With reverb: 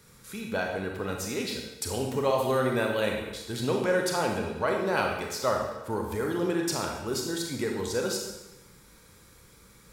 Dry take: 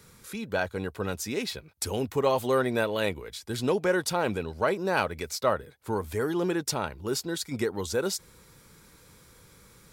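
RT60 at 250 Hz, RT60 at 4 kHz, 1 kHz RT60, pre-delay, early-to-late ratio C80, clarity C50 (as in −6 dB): 1.0 s, 0.95 s, 1.0 s, 21 ms, 5.0 dB, 2.5 dB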